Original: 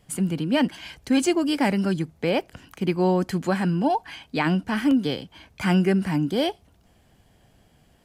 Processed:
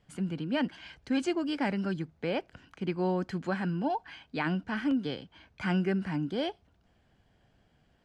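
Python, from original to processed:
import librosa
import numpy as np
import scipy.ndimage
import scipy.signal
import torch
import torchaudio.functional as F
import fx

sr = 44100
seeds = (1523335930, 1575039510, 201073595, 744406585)

y = scipy.signal.sosfilt(scipy.signal.butter(2, 5000.0, 'lowpass', fs=sr, output='sos'), x)
y = fx.peak_eq(y, sr, hz=1500.0, db=4.5, octaves=0.34)
y = F.gain(torch.from_numpy(y), -8.5).numpy()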